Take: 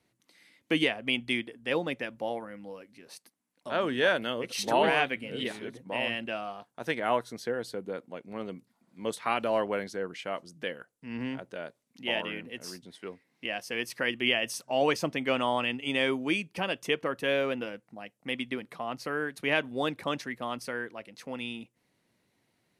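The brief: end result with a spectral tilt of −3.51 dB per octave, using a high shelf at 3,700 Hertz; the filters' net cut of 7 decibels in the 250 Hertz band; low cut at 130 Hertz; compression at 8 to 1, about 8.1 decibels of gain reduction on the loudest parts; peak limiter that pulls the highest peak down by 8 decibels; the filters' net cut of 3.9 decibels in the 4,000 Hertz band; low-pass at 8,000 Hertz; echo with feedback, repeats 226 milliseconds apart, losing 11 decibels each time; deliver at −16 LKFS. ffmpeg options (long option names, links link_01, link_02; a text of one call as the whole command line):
ffmpeg -i in.wav -af "highpass=130,lowpass=8000,equalizer=frequency=250:width_type=o:gain=-8.5,highshelf=frequency=3700:gain=-3.5,equalizer=frequency=4000:width_type=o:gain=-3.5,acompressor=threshold=-30dB:ratio=8,alimiter=level_in=1.5dB:limit=-24dB:level=0:latency=1,volume=-1.5dB,aecho=1:1:226|452|678:0.282|0.0789|0.0221,volume=23dB" out.wav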